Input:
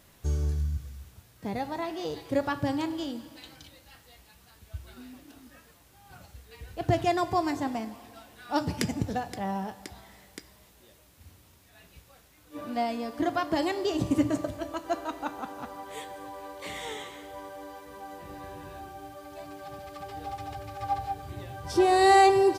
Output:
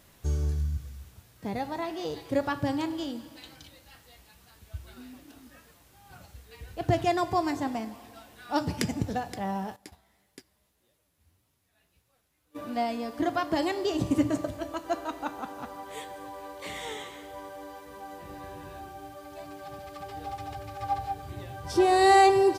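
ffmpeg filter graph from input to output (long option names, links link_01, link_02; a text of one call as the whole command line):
ffmpeg -i in.wav -filter_complex "[0:a]asettb=1/sr,asplit=3[link_01][link_02][link_03];[link_01]atrim=end=9.764[link_04];[link_02]atrim=start=9.76:end=12.56,asetpts=PTS-STARTPTS,afade=type=in:duration=0.004:curve=qsin,afade=type=out:start_time=2.796:duration=0.004:curve=qsin,equalizer=frequency=11000:width=7:gain=7,agate=range=-11dB:threshold=-46dB:ratio=16:release=100:detection=peak,flanger=delay=6.4:depth=8.7:regen=42:speed=1.7:shape=triangular[link_05];[link_03]atrim=start=12.556[link_06];[link_04][link_05]acrossfade=duration=0.004:curve1=hsin:curve2=qsin[link_07];[link_07][link_06]acrossfade=duration=0.004:curve1=qsin:curve2=hsin" out.wav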